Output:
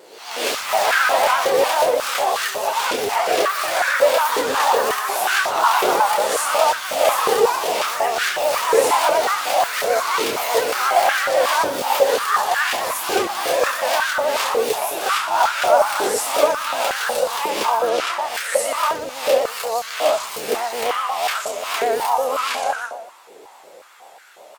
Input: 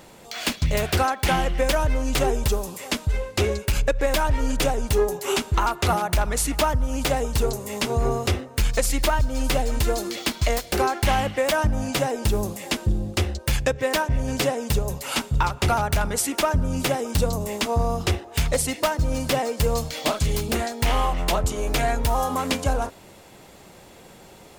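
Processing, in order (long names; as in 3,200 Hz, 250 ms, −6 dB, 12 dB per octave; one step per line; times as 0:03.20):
peak hold with a rise ahead of every peak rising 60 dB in 0.75 s
on a send: reverse bouncing-ball delay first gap 30 ms, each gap 1.3×, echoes 5
on the sum: pitch vibrato 8.2 Hz 80 cents
delay with pitch and tempo change per echo 116 ms, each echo +4 semitones, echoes 3
0:17.89–0:18.35: high-shelf EQ 10,000 Hz −8.5 dB
high-pass on a step sequencer 5.5 Hz 430–1,500 Hz
level −5 dB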